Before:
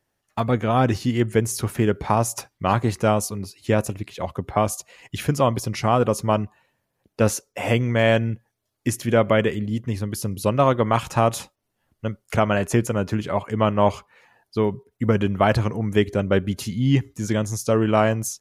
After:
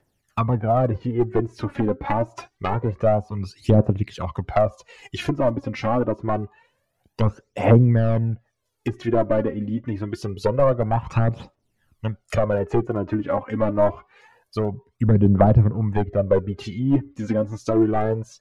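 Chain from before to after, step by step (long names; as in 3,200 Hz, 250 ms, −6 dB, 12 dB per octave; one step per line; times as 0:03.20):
wave folding −11.5 dBFS
treble cut that deepens with the level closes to 830 Hz, closed at −18.5 dBFS
phase shifter 0.26 Hz, delay 3.9 ms, feedback 66%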